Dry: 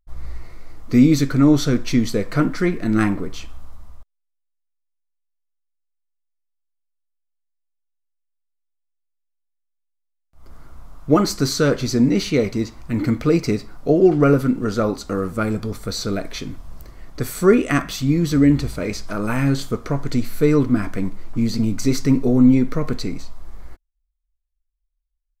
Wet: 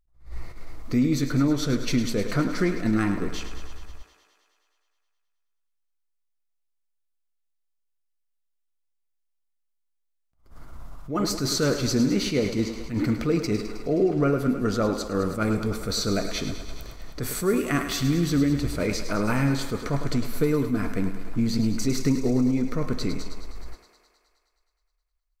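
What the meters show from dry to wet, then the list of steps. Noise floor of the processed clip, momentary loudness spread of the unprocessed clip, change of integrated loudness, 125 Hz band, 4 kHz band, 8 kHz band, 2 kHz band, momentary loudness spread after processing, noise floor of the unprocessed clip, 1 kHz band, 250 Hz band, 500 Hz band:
−74 dBFS, 13 LU, −6.0 dB, −5.5 dB, −1.5 dB, −1.5 dB, −4.0 dB, 13 LU, −74 dBFS, −5.0 dB, −6.5 dB, −6.0 dB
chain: downward compressor 5 to 1, threshold −19 dBFS, peak gain reduction 10.5 dB
on a send: feedback echo with a high-pass in the loop 105 ms, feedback 74%, high-pass 210 Hz, level −10 dB
on the sum: level that may rise only so fast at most 150 dB per second

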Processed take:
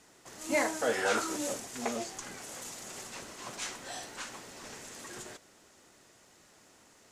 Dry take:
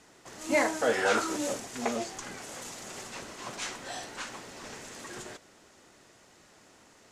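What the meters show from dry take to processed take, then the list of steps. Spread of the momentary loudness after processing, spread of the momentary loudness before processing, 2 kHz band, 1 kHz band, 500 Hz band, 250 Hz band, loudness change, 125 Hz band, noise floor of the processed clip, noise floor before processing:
15 LU, 16 LU, −3.0 dB, −3.5 dB, −3.5 dB, −3.5 dB, −3.0 dB, −3.5 dB, −61 dBFS, −59 dBFS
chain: high-shelf EQ 7,900 Hz +8 dB
level −3.5 dB

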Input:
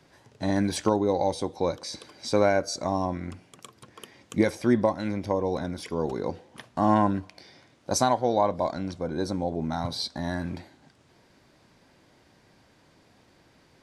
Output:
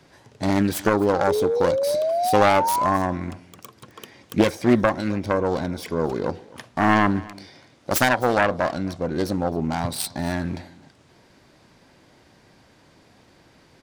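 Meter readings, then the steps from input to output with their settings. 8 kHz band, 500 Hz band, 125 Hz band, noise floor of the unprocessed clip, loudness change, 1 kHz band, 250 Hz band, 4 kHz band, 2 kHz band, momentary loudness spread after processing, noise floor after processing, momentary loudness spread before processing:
+3.0 dB, +5.0 dB, +4.5 dB, −61 dBFS, +5.0 dB, +6.0 dB, +4.0 dB, +3.0 dB, +11.5 dB, 12 LU, −56 dBFS, 13 LU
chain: phase distortion by the signal itself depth 0.45 ms
sound drawn into the spectrogram rise, 0:01.27–0:02.97, 400–1,100 Hz −27 dBFS
single-tap delay 262 ms −21.5 dB
level +5 dB

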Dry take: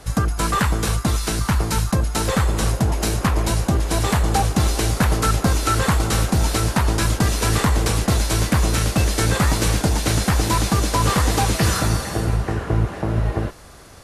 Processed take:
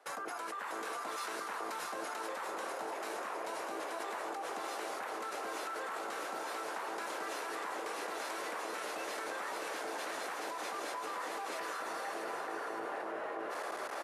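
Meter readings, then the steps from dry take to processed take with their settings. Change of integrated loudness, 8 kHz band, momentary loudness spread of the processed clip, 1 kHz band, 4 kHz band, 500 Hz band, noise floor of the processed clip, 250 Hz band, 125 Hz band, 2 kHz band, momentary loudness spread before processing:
−19.5 dB, −22.5 dB, 1 LU, −13.5 dB, −20.0 dB, −14.0 dB, −41 dBFS, −26.0 dB, below −40 dB, −13.5 dB, 4 LU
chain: high-pass filter 300 Hz 24 dB per octave
three-way crossover with the lows and the highs turned down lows −14 dB, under 450 Hz, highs −13 dB, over 2,300 Hz
reversed playback
upward compression, threshold −38 dBFS
reversed playback
brickwall limiter −21 dBFS, peak gain reduction 10.5 dB
output level in coarse steps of 23 dB
on a send: single-tap delay 642 ms −6 dB
on the sum: level +5 dB

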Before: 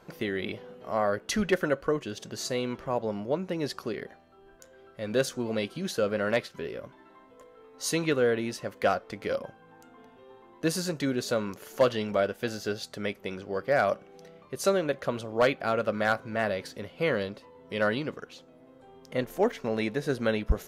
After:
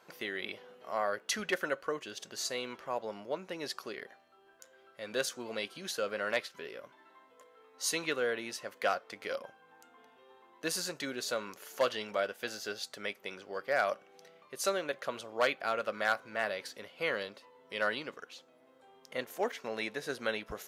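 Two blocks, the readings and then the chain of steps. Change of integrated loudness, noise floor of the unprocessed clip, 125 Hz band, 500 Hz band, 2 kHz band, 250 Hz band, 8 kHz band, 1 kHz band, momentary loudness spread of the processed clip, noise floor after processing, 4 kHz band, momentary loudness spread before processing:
−6.0 dB, −56 dBFS, −18.0 dB, −7.5 dB, −2.5 dB, −13.0 dB, −1.0 dB, −4.5 dB, 12 LU, −63 dBFS, −1.5 dB, 12 LU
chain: high-pass filter 1,000 Hz 6 dB per octave
level −1 dB

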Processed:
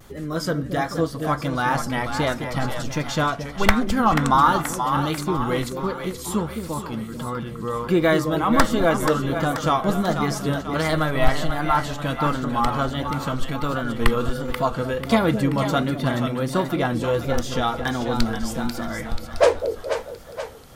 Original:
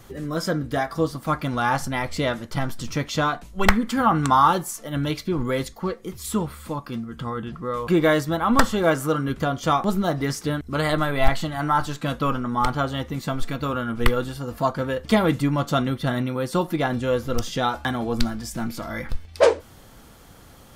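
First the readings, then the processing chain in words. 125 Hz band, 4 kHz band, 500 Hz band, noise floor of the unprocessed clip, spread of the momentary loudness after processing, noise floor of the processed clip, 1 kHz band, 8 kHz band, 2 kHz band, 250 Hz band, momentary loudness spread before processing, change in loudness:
+1.0 dB, +1.0 dB, +1.0 dB, −47 dBFS, 10 LU, −35 dBFS, +1.0 dB, +1.0 dB, +1.0 dB, +1.0 dB, 10 LU, +1.0 dB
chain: echo with a time of its own for lows and highs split 560 Hz, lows 217 ms, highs 485 ms, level −7 dB
pitch vibrato 1.4 Hz 62 cents

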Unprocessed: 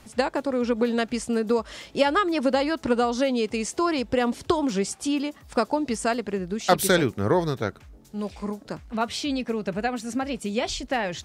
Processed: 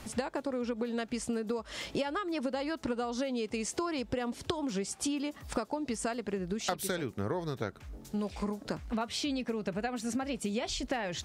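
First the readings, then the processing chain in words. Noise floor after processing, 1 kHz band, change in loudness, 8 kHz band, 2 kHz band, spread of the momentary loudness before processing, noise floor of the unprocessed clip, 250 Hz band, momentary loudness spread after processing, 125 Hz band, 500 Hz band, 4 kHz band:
−53 dBFS, −11.0 dB, −9.5 dB, −5.5 dB, −10.5 dB, 9 LU, −52 dBFS, −8.5 dB, 3 LU, −8.0 dB, −10.5 dB, −7.5 dB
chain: downward compressor 10 to 1, threshold −34 dBFS, peak gain reduction 20.5 dB
level +3.5 dB

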